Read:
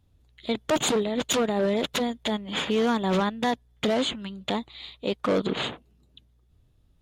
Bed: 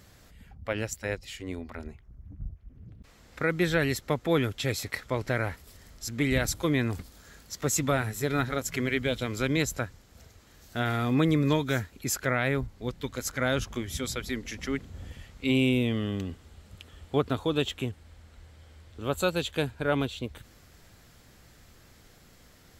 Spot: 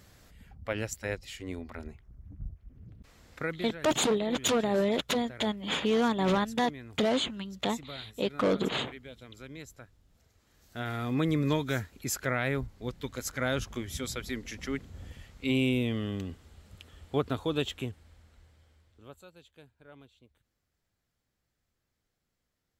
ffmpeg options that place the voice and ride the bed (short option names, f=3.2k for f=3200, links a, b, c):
-filter_complex "[0:a]adelay=3150,volume=-2.5dB[a];[1:a]volume=13.5dB,afade=t=out:st=3.29:d=0.39:silence=0.149624,afade=t=in:st=10.04:d=1.43:silence=0.16788,afade=t=out:st=17.72:d=1.51:silence=0.0668344[b];[a][b]amix=inputs=2:normalize=0"